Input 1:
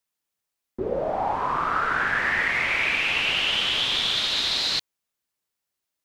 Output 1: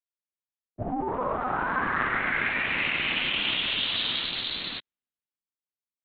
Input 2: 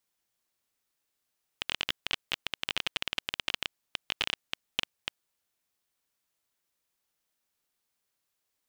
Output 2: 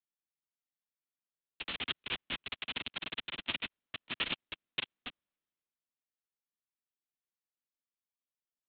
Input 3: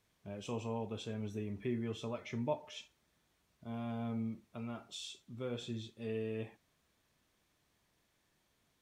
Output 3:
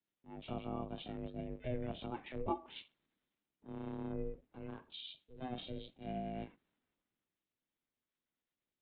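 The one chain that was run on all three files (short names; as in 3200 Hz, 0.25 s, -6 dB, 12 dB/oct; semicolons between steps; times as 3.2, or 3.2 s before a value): LPC vocoder at 8 kHz pitch kept; ring modulator 250 Hz; three-band expander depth 40%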